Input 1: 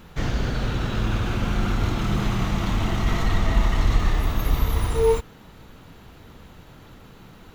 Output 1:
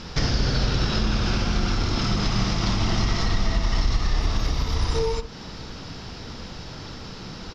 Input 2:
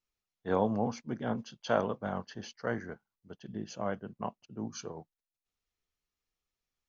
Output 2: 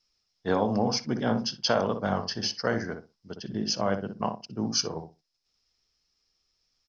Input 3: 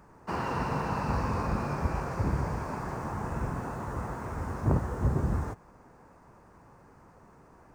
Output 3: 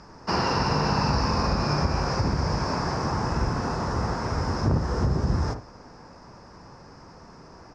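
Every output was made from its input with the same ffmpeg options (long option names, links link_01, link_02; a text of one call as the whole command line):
ffmpeg -i in.wav -filter_complex "[0:a]acompressor=threshold=-28dB:ratio=6,lowpass=frequency=5200:width_type=q:width=10,asplit=2[link_01][link_02];[link_02]adelay=61,lowpass=frequency=990:poles=1,volume=-6dB,asplit=2[link_03][link_04];[link_04]adelay=61,lowpass=frequency=990:poles=1,volume=0.22,asplit=2[link_05][link_06];[link_06]adelay=61,lowpass=frequency=990:poles=1,volume=0.22[link_07];[link_03][link_05][link_07]amix=inputs=3:normalize=0[link_08];[link_01][link_08]amix=inputs=2:normalize=0,volume=7.5dB" out.wav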